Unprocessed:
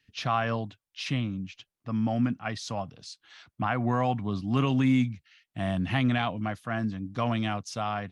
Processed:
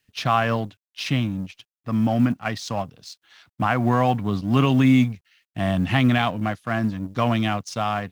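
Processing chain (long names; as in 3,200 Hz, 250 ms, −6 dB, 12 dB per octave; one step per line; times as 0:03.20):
mu-law and A-law mismatch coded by A
level +7.5 dB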